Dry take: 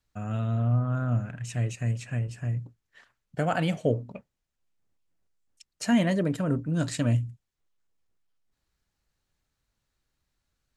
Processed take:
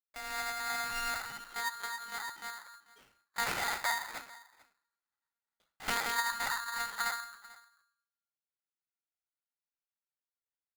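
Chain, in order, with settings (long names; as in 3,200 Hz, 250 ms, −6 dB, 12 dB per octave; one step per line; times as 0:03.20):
0:03.42–0:06.12: ceiling on every frequency bin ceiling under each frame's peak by 25 dB
loudspeaker in its box 130–2,600 Hz, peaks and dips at 140 Hz −10 dB, 200 Hz −8 dB, 300 Hz +3 dB, 450 Hz +6 dB, 1,100 Hz −5 dB
noise gate with hold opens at −49 dBFS
flat-topped bell 650 Hz +10.5 dB 2.4 octaves
downward compressor 6 to 1, threshold −21 dBFS, peak gain reduction 12 dB
rectangular room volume 400 cubic metres, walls furnished, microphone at 1.3 metres
flanger 1.4 Hz, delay 3 ms, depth 2 ms, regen −60%
one-pitch LPC vocoder at 8 kHz 230 Hz
single-tap delay 441 ms −20.5 dB
regular buffer underruns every 0.46 s, samples 512, repeat, from 0:00.89
ring modulator with a square carrier 1,400 Hz
level −6.5 dB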